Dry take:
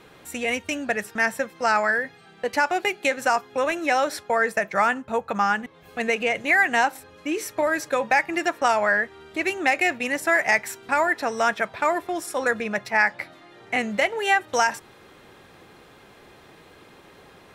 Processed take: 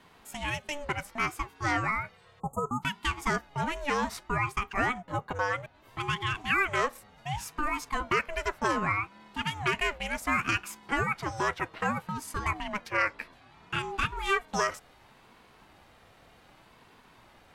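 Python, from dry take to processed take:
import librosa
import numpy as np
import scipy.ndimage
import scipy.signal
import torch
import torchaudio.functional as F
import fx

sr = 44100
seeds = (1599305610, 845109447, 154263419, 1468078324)

y = fx.spec_erase(x, sr, start_s=2.4, length_s=0.43, low_hz=1000.0, high_hz=6700.0)
y = fx.ring_lfo(y, sr, carrier_hz=450.0, swing_pct=35, hz=0.65)
y = y * 10.0 ** (-4.5 / 20.0)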